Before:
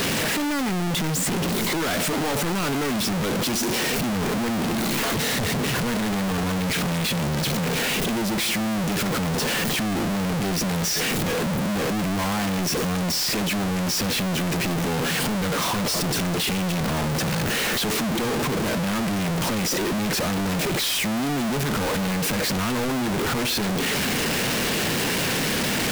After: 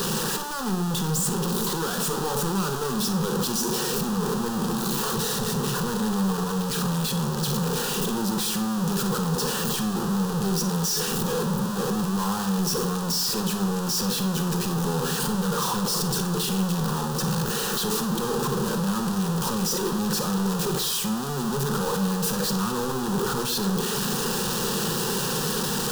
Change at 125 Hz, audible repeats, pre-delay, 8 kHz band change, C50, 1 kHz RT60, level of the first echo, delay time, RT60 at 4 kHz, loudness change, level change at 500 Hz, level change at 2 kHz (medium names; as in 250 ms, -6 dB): -0.5 dB, no echo, 34 ms, -0.5 dB, 10.0 dB, 0.55 s, no echo, no echo, 0.50 s, -1.5 dB, -1.5 dB, -8.5 dB